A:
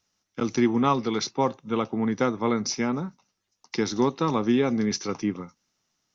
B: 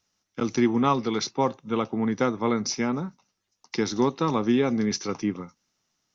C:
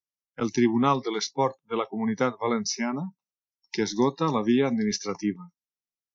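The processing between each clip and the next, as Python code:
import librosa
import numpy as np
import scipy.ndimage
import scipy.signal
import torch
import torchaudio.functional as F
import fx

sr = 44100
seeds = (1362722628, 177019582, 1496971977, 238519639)

y1 = x
y2 = fx.noise_reduce_blind(y1, sr, reduce_db=28)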